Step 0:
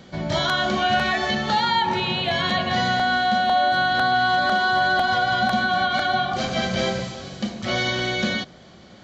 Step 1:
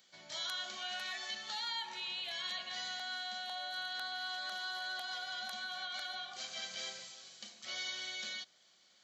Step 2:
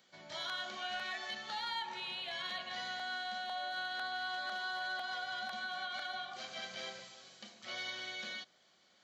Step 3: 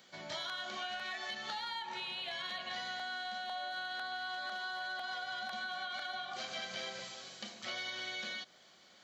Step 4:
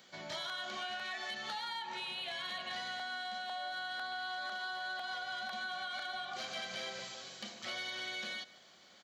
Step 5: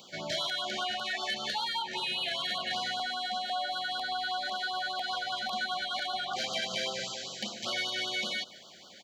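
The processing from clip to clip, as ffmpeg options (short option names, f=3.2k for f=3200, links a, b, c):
-af "aderivative,volume=-7dB"
-filter_complex "[0:a]acrossover=split=5600[a][b];[b]acompressor=threshold=-56dB:ratio=4:attack=1:release=60[c];[a][c]amix=inputs=2:normalize=0,aeval=exprs='0.0398*(cos(1*acos(clip(val(0)/0.0398,-1,1)))-cos(1*PI/2))+0.00355*(cos(3*acos(clip(val(0)/0.0398,-1,1)))-cos(3*PI/2))':c=same,highshelf=f=2.7k:g=-11.5,volume=7.5dB"
-af "acompressor=threshold=-45dB:ratio=6,volume=7dB"
-filter_complex "[0:a]asoftclip=type=tanh:threshold=-32.5dB,asplit=2[a][b];[b]adelay=151.6,volume=-18dB,highshelf=f=4k:g=-3.41[c];[a][c]amix=inputs=2:normalize=0,volume=1dB"
-af "afftfilt=real='re*(1-between(b*sr/1024,960*pow(2100/960,0.5+0.5*sin(2*PI*5.1*pts/sr))/1.41,960*pow(2100/960,0.5+0.5*sin(2*PI*5.1*pts/sr))*1.41))':imag='im*(1-between(b*sr/1024,960*pow(2100/960,0.5+0.5*sin(2*PI*5.1*pts/sr))/1.41,960*pow(2100/960,0.5+0.5*sin(2*PI*5.1*pts/sr))*1.41))':win_size=1024:overlap=0.75,volume=9dB"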